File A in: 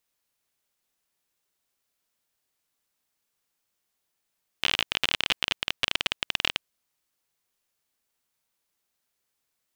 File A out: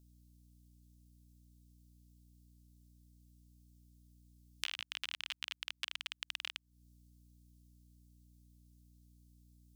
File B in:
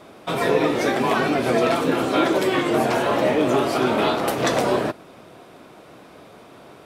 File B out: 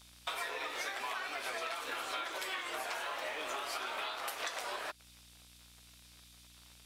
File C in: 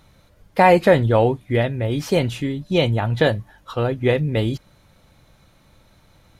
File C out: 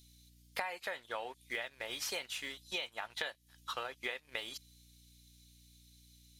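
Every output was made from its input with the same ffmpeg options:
-filter_complex "[0:a]highpass=1200,acrossover=split=3500[s0][s1];[s0]aeval=exprs='sgn(val(0))*max(abs(val(0))-0.00355,0)':c=same[s2];[s2][s1]amix=inputs=2:normalize=0,aeval=exprs='val(0)+0.000631*(sin(2*PI*60*n/s)+sin(2*PI*2*60*n/s)/2+sin(2*PI*3*60*n/s)/3+sin(2*PI*4*60*n/s)/4+sin(2*PI*5*60*n/s)/5)':c=same,acompressor=threshold=0.0141:ratio=16,volume=1.19"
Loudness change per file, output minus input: -15.0 LU, -18.0 LU, -21.5 LU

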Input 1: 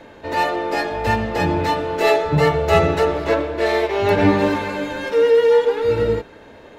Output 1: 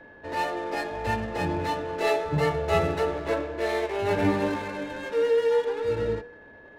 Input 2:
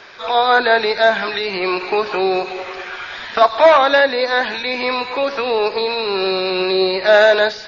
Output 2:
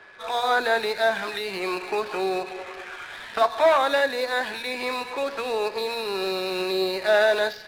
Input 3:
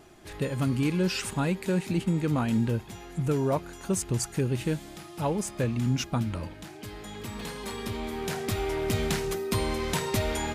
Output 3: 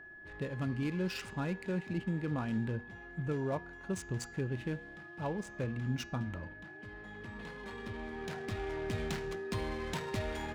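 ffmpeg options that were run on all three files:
-af "adynamicsmooth=sensitivity=7:basefreq=1900,bandreject=f=239.5:t=h:w=4,bandreject=f=479:t=h:w=4,bandreject=f=718.5:t=h:w=4,bandreject=f=958:t=h:w=4,bandreject=f=1197.5:t=h:w=4,bandreject=f=1437:t=h:w=4,bandreject=f=1676.5:t=h:w=4,bandreject=f=1916:t=h:w=4,bandreject=f=2155.5:t=h:w=4,bandreject=f=2395:t=h:w=4,bandreject=f=2634.5:t=h:w=4,bandreject=f=2874:t=h:w=4,bandreject=f=3113.5:t=h:w=4,bandreject=f=3353:t=h:w=4,bandreject=f=3592.5:t=h:w=4,bandreject=f=3832:t=h:w=4,bandreject=f=4071.5:t=h:w=4,bandreject=f=4311:t=h:w=4,bandreject=f=4550.5:t=h:w=4,bandreject=f=4790:t=h:w=4,bandreject=f=5029.5:t=h:w=4,bandreject=f=5269:t=h:w=4,bandreject=f=5508.5:t=h:w=4,bandreject=f=5748:t=h:w=4,bandreject=f=5987.5:t=h:w=4,bandreject=f=6227:t=h:w=4,bandreject=f=6466.5:t=h:w=4,bandreject=f=6706:t=h:w=4,bandreject=f=6945.5:t=h:w=4,bandreject=f=7185:t=h:w=4,bandreject=f=7424.5:t=h:w=4,aeval=exprs='val(0)+0.00891*sin(2*PI*1700*n/s)':c=same,volume=0.376"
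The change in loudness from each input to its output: -8.5 LU, -8.5 LU, -9.0 LU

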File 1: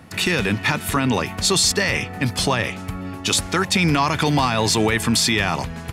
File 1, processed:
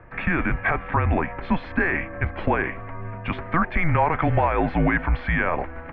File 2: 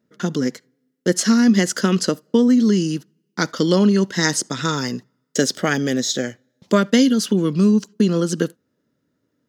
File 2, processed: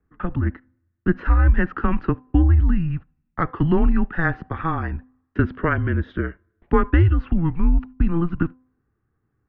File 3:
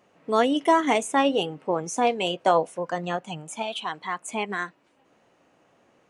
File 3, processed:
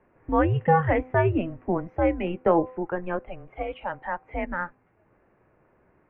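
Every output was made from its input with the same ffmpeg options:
-af "highpass=f=170:t=q:w=0.5412,highpass=f=170:t=q:w=1.307,lowpass=f=2300:t=q:w=0.5176,lowpass=f=2300:t=q:w=0.7071,lowpass=f=2300:t=q:w=1.932,afreqshift=-170,bandreject=f=255.7:t=h:w=4,bandreject=f=511.4:t=h:w=4,bandreject=f=767.1:t=h:w=4,bandreject=f=1022.8:t=h:w=4"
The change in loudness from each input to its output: -4.5 LU, -3.5 LU, -1.0 LU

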